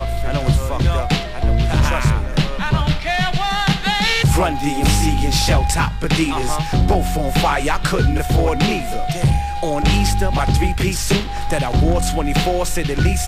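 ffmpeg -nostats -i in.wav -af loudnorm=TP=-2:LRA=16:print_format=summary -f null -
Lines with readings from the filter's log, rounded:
Input Integrated:    -18.3 LUFS
Input True Peak:      -4.9 dBTP
Input LRA:             1.5 LU
Input Threshold:     -28.3 LUFS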